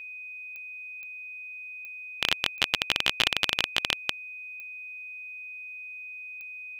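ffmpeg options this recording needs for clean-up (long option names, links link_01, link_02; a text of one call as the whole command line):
ffmpeg -i in.wav -af "adeclick=threshold=4,bandreject=frequency=2500:width=30" out.wav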